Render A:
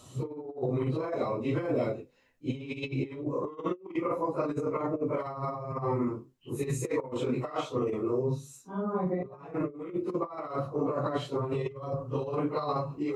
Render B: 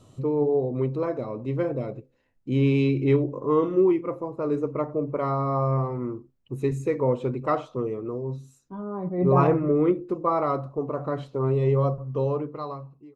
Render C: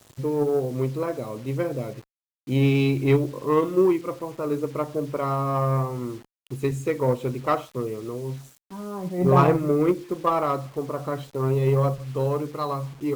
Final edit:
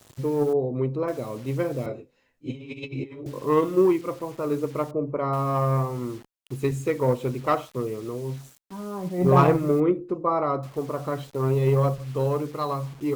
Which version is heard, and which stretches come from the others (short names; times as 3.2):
C
0.53–1.08 from B
1.86–3.26 from A
4.91–5.33 from B
9.8–10.63 from B